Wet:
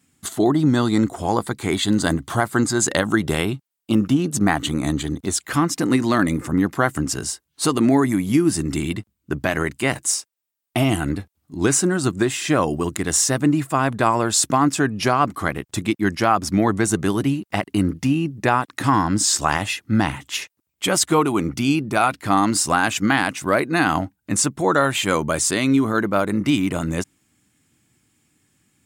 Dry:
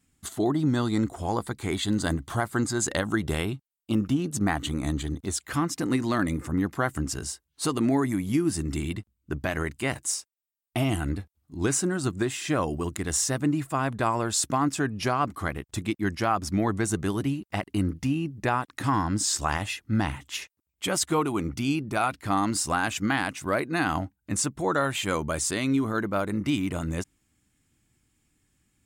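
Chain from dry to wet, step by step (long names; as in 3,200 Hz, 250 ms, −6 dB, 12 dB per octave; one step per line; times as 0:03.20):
high-pass filter 110 Hz
level +7.5 dB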